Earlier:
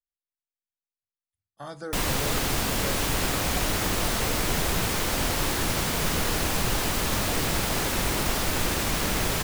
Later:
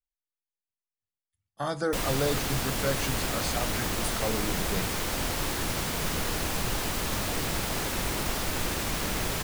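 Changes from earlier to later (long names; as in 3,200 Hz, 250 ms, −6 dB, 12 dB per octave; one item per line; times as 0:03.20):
speech +8.0 dB
background −4.0 dB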